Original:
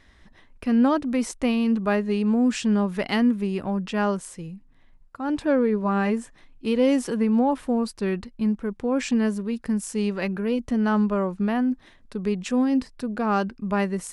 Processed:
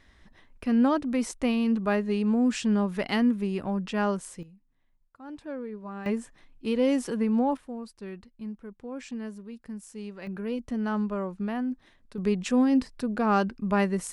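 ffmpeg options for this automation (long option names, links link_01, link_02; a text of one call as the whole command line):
ffmpeg -i in.wav -af "asetnsamples=nb_out_samples=441:pad=0,asendcmd='4.43 volume volume -15.5dB;6.06 volume volume -4dB;7.57 volume volume -14dB;10.27 volume volume -7dB;12.18 volume volume -0.5dB',volume=-3dB" out.wav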